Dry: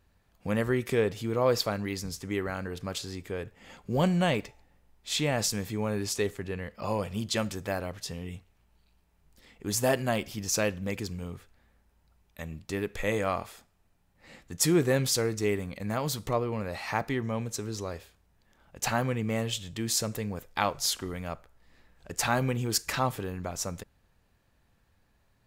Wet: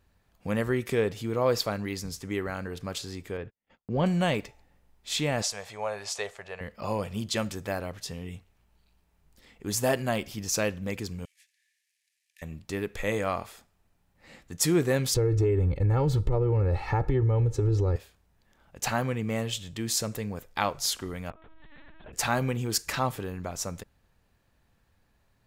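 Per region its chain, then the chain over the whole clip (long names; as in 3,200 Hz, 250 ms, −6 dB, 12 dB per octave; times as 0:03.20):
0:03.37–0:04.06: noise gate −48 dBFS, range −40 dB + high-frequency loss of the air 210 metres
0:05.42–0:06.61: low-pass filter 8,200 Hz + low shelf with overshoot 430 Hz −13.5 dB, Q 3
0:11.25–0:12.42: variable-slope delta modulation 64 kbit/s + downward compressor 5 to 1, threshold −44 dBFS + Chebyshev high-pass with heavy ripple 1,700 Hz, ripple 3 dB
0:15.14–0:17.96: spectral tilt −4.5 dB per octave + comb filter 2.3 ms, depth 87% + downward compressor, threshold −20 dBFS
0:21.30–0:22.13: gate with flip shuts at −34 dBFS, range −29 dB + linear-prediction vocoder at 8 kHz pitch kept + envelope flattener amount 70%
whole clip: no processing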